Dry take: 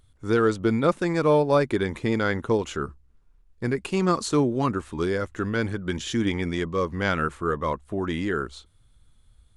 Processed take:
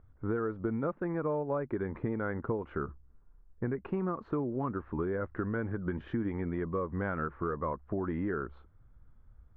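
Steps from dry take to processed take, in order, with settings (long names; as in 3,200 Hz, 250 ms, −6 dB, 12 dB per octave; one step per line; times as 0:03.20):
low-pass filter 1,600 Hz 24 dB per octave
downward compressor, threshold −30 dBFS, peak gain reduction 14 dB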